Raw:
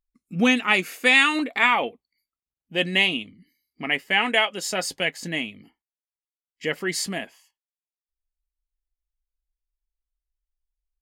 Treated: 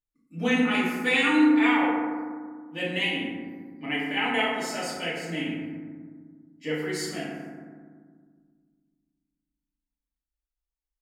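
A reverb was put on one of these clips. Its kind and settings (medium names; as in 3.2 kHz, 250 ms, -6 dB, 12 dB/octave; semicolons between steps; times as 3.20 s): FDN reverb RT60 1.7 s, low-frequency decay 1.55×, high-frequency decay 0.35×, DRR -9 dB; trim -13.5 dB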